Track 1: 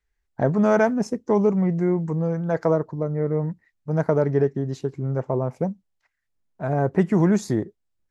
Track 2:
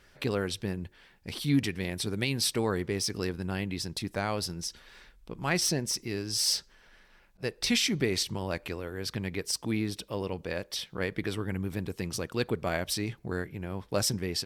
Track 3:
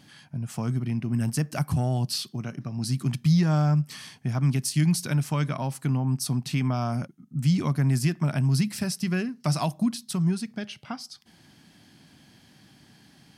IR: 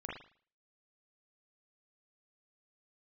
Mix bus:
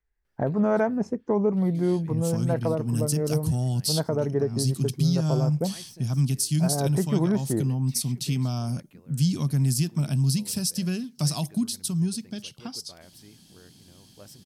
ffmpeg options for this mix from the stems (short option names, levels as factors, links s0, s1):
-filter_complex "[0:a]volume=0.794[s0];[1:a]aemphasis=mode=production:type=50fm,adelay=250,volume=0.112[s1];[2:a]lowshelf=f=370:g=10,aexciter=amount=7.6:drive=2.9:freq=2900,highshelf=f=3300:g=8,adelay=1750,volume=0.376[s2];[s0][s1][s2]amix=inputs=3:normalize=0,highshelf=f=2500:g=-11.5,alimiter=limit=0.2:level=0:latency=1:release=234"